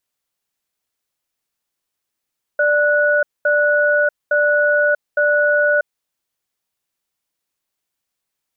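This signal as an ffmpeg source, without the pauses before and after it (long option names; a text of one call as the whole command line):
ffmpeg -f lavfi -i "aevalsrc='0.178*(sin(2*PI*590*t)+sin(2*PI*1470*t))*clip(min(mod(t,0.86),0.64-mod(t,0.86))/0.005,0,1)':duration=3.26:sample_rate=44100" out.wav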